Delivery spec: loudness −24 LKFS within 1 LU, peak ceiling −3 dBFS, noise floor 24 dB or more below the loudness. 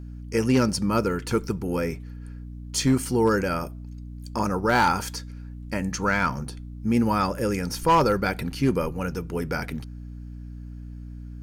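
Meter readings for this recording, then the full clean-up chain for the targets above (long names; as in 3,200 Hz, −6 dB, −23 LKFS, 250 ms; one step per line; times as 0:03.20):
share of clipped samples 0.4%; peaks flattened at −13.0 dBFS; mains hum 60 Hz; hum harmonics up to 300 Hz; level of the hum −35 dBFS; integrated loudness −25.0 LKFS; sample peak −13.0 dBFS; target loudness −24.0 LKFS
→ clipped peaks rebuilt −13 dBFS
hum removal 60 Hz, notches 5
level +1 dB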